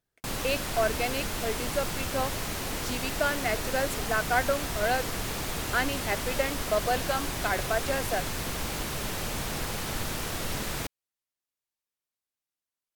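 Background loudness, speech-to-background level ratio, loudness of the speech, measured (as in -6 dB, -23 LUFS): -32.5 LUFS, 1.5 dB, -31.0 LUFS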